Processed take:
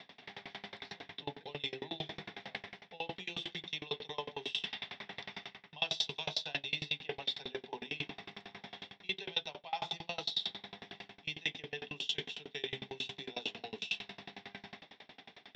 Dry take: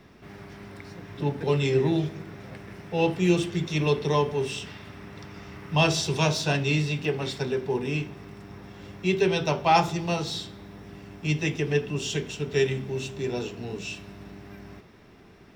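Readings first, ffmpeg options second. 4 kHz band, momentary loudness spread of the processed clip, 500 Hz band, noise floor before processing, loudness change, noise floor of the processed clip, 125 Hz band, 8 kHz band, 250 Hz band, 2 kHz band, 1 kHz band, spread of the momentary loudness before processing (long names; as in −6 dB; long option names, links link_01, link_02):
−3.0 dB, 13 LU, −19.5 dB, −51 dBFS, −13.5 dB, −66 dBFS, −25.0 dB, −17.5 dB, −22.0 dB, −9.5 dB, −16.0 dB, 21 LU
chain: -af "highpass=240,equalizer=frequency=350:width_type=q:width=4:gain=-9,equalizer=frequency=770:width_type=q:width=4:gain=7,equalizer=frequency=1300:width_type=q:width=4:gain=-6,equalizer=frequency=2000:width_type=q:width=4:gain=4,equalizer=frequency=3500:width_type=q:width=4:gain=10,lowpass=frequency=4300:width=0.5412,lowpass=frequency=4300:width=1.3066,areverse,acompressor=threshold=-38dB:ratio=4,areverse,crystalizer=i=4:c=0,bandreject=frequency=60:width_type=h:width=6,bandreject=frequency=120:width_type=h:width=6,bandreject=frequency=180:width_type=h:width=6,bandreject=frequency=240:width_type=h:width=6,bandreject=frequency=300:width_type=h:width=6,bandreject=frequency=360:width_type=h:width=6,bandreject=frequency=420:width_type=h:width=6,bandreject=frequency=480:width_type=h:width=6,bandreject=frequency=540:width_type=h:width=6,bandreject=frequency=600:width_type=h:width=6,aeval=exprs='val(0)*pow(10,-29*if(lt(mod(11*n/s,1),2*abs(11)/1000),1-mod(11*n/s,1)/(2*abs(11)/1000),(mod(11*n/s,1)-2*abs(11)/1000)/(1-2*abs(11)/1000))/20)':channel_layout=same,volume=3dB"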